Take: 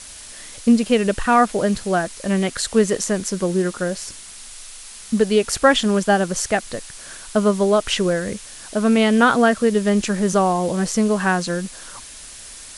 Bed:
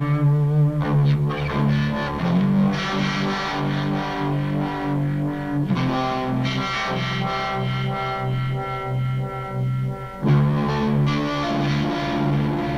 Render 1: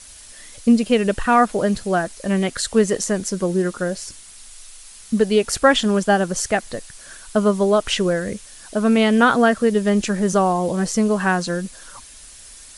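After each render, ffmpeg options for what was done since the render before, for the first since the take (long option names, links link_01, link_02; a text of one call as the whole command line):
ffmpeg -i in.wav -af "afftdn=noise_reduction=6:noise_floor=-39" out.wav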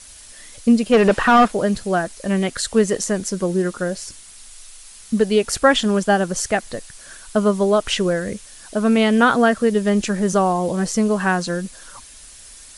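ffmpeg -i in.wav -filter_complex "[0:a]asplit=3[link_01][link_02][link_03];[link_01]afade=type=out:start_time=0.92:duration=0.02[link_04];[link_02]asplit=2[link_05][link_06];[link_06]highpass=frequency=720:poles=1,volume=23dB,asoftclip=type=tanh:threshold=-4dB[link_07];[link_05][link_07]amix=inputs=2:normalize=0,lowpass=frequency=1300:poles=1,volume=-6dB,afade=type=in:start_time=0.92:duration=0.02,afade=type=out:start_time=1.47:duration=0.02[link_08];[link_03]afade=type=in:start_time=1.47:duration=0.02[link_09];[link_04][link_08][link_09]amix=inputs=3:normalize=0" out.wav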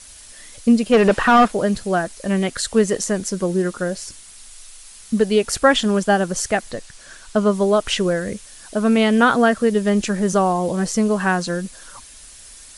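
ffmpeg -i in.wav -filter_complex "[0:a]asettb=1/sr,asplit=3[link_01][link_02][link_03];[link_01]atrim=end=6.714[link_04];[link_02]atrim=start=6.71:end=7.51,asetpts=PTS-STARTPTS,afade=type=in:duration=0.004:curve=qsin,afade=type=out:start_time=0.796:duration=0.004:curve=qsin,lowpass=8000[link_05];[link_03]atrim=start=7.506[link_06];[link_04][link_05]acrossfade=duration=0.004:curve1=hsin:curve2=qsin[link_07];[link_07][link_06]acrossfade=duration=0.004:curve1=qsin:curve2=hsin" out.wav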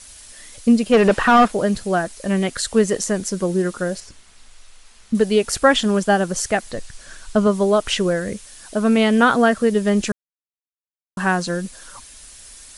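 ffmpeg -i in.wav -filter_complex "[0:a]asettb=1/sr,asplit=3[link_01][link_02][link_03];[link_01]atrim=end=4.004[link_04];[link_02]atrim=start=4:end=5.15,asetpts=PTS-STARTPTS,afade=type=in:duration=0.004:curve=qsin,afade=type=out:start_time=1.146:duration=0.004:curve=qsin,aemphasis=mode=reproduction:type=75fm[link_05];[link_03]atrim=start=5.146[link_06];[link_04][link_05]acrossfade=duration=0.004:curve1=hsin:curve2=qsin[link_07];[link_07][link_06]acrossfade=duration=0.004:curve1=qsin:curve2=hsin,asettb=1/sr,asplit=3[link_08][link_09][link_10];[link_08]atrim=end=6.764[link_11];[link_09]atrim=start=6.76:end=7.47,asetpts=PTS-STARTPTS,afade=type=in:duration=0.004:curve=qsin,afade=type=out:start_time=0.706:duration=0.004:curve=qsin,lowshelf=frequency=120:gain=8.5[link_12];[link_10]atrim=start=7.466[link_13];[link_11][link_12]acrossfade=duration=0.004:curve1=hsin:curve2=qsin[link_14];[link_14][link_13]acrossfade=duration=0.004:curve1=qsin:curve2=hsin,asplit=3[link_15][link_16][link_17];[link_15]atrim=end=10.12,asetpts=PTS-STARTPTS,afade=type=out:start_time=10.116:duration=0.004:curve=hsin[link_18];[link_16]atrim=start=10.12:end=11.17,asetpts=PTS-STARTPTS,volume=0[link_19];[link_17]atrim=start=11.17,asetpts=PTS-STARTPTS,afade=type=in:duration=0.004:curve=hsin[link_20];[link_18][link_19][link_20]concat=n=3:v=0:a=1" out.wav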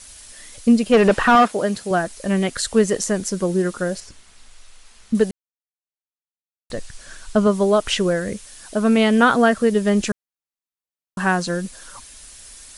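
ffmpeg -i in.wav -filter_complex "[0:a]asettb=1/sr,asplit=3[link_01][link_02][link_03];[link_01]atrim=end=1.354[link_04];[link_02]atrim=start=1.35:end=1.91,asetpts=PTS-STARTPTS,afade=type=in:duration=0.004:curve=qsin,afade=type=out:start_time=0.556:duration=0.004:curve=qsin,highpass=frequency=240:poles=1[link_05];[link_03]atrim=start=1.906[link_06];[link_04][link_05]acrossfade=duration=0.004:curve1=hsin:curve2=qsin[link_07];[link_07][link_06]acrossfade=duration=0.004:curve1=qsin:curve2=hsin,asplit=3[link_08][link_09][link_10];[link_08]atrim=end=5.31,asetpts=PTS-STARTPTS,afade=type=out:start_time=5.306:duration=0.004:curve=hsin[link_11];[link_09]atrim=start=5.31:end=6.7,asetpts=PTS-STARTPTS,volume=0[link_12];[link_10]atrim=start=6.7,asetpts=PTS-STARTPTS,afade=type=in:duration=0.004:curve=hsin[link_13];[link_11][link_12][link_13]concat=n=3:v=0:a=1" out.wav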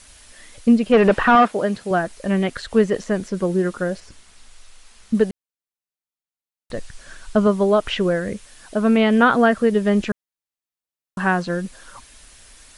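ffmpeg -i in.wav -filter_complex "[0:a]acrossover=split=3600[link_01][link_02];[link_02]acompressor=threshold=-47dB:ratio=4:attack=1:release=60[link_03];[link_01][link_03]amix=inputs=2:normalize=0" out.wav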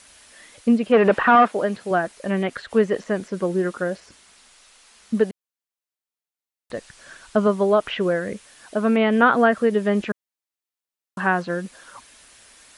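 ffmpeg -i in.wav -filter_complex "[0:a]highpass=frequency=250:poles=1,acrossover=split=3100[link_01][link_02];[link_02]acompressor=threshold=-47dB:ratio=4:attack=1:release=60[link_03];[link_01][link_03]amix=inputs=2:normalize=0" out.wav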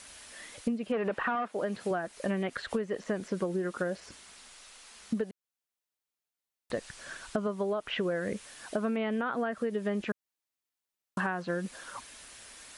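ffmpeg -i in.wav -af "alimiter=limit=-10.5dB:level=0:latency=1:release=466,acompressor=threshold=-28dB:ratio=12" out.wav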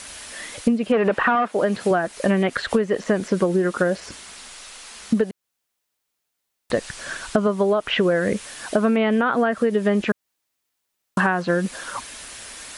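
ffmpeg -i in.wav -af "volume=12dB" out.wav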